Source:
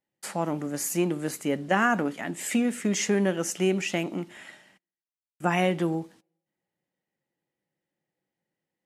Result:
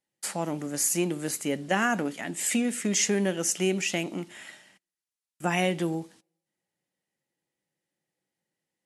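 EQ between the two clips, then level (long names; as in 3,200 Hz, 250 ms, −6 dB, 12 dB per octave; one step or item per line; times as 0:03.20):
dynamic equaliser 1,200 Hz, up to −4 dB, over −41 dBFS, Q 1.8
linear-phase brick-wall low-pass 12,000 Hz
high-shelf EQ 3,000 Hz +8.5 dB
−2.0 dB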